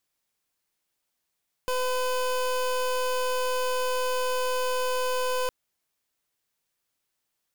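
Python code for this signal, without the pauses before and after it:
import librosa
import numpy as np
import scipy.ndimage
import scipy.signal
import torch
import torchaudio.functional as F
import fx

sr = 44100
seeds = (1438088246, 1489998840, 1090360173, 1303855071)

y = fx.pulse(sr, length_s=3.81, hz=506.0, level_db=-26.5, duty_pct=26)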